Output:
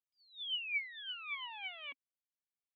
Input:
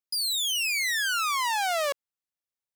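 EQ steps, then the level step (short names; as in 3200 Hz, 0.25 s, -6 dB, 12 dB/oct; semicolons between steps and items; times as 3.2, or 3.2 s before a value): vocal tract filter i; resonant low shelf 720 Hz -9.5 dB, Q 3; +3.5 dB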